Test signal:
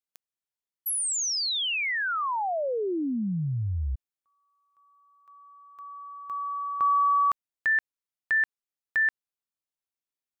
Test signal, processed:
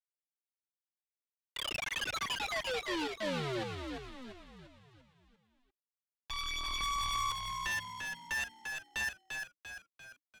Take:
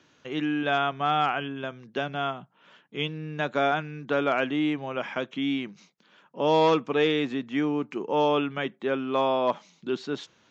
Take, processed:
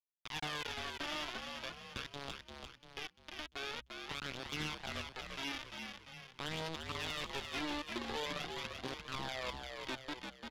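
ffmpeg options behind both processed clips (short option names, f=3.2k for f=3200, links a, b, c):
-filter_complex "[0:a]aecho=1:1:6.1:0.38,alimiter=limit=-16.5dB:level=0:latency=1:release=440,acompressor=threshold=-29dB:ratio=8:attack=0.51:release=211:knee=6:detection=rms,aresample=8000,acrusher=bits=4:mix=0:aa=0.000001,aresample=44100,aphaser=in_gain=1:out_gain=1:delay=3.5:decay=0.38:speed=0.45:type=triangular,asoftclip=type=tanh:threshold=-34dB,asplit=2[a][b];[b]asplit=6[c][d][e][f][g][h];[c]adelay=345,afreqshift=-63,volume=-5dB[i];[d]adelay=690,afreqshift=-126,volume=-11.4dB[j];[e]adelay=1035,afreqshift=-189,volume=-17.8dB[k];[f]adelay=1380,afreqshift=-252,volume=-24.1dB[l];[g]adelay=1725,afreqshift=-315,volume=-30.5dB[m];[h]adelay=2070,afreqshift=-378,volume=-36.9dB[n];[i][j][k][l][m][n]amix=inputs=6:normalize=0[o];[a][o]amix=inputs=2:normalize=0,volume=1dB"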